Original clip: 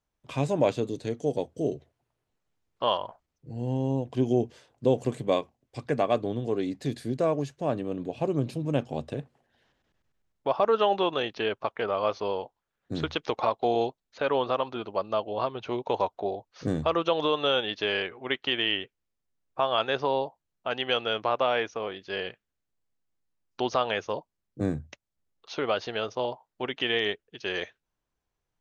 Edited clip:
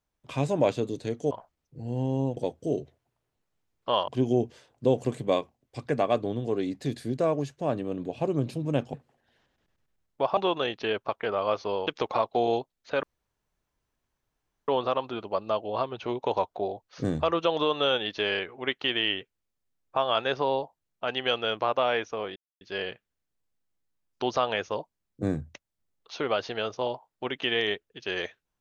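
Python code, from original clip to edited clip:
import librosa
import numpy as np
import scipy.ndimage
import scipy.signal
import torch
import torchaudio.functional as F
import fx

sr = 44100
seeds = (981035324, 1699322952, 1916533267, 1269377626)

y = fx.edit(x, sr, fx.move(start_s=3.02, length_s=1.06, to_s=1.31),
    fx.cut(start_s=8.94, length_s=0.26),
    fx.cut(start_s=10.63, length_s=0.3),
    fx.cut(start_s=12.43, length_s=0.72),
    fx.insert_room_tone(at_s=14.31, length_s=1.65),
    fx.insert_silence(at_s=21.99, length_s=0.25), tone=tone)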